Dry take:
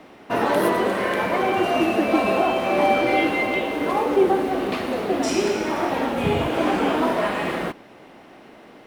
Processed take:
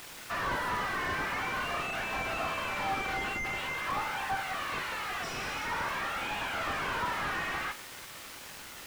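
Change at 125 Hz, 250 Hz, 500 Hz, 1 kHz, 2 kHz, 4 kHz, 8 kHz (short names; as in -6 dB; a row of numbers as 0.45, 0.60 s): -11.5, -21.5, -20.5, -10.0, -5.0, -6.0, -6.0 dB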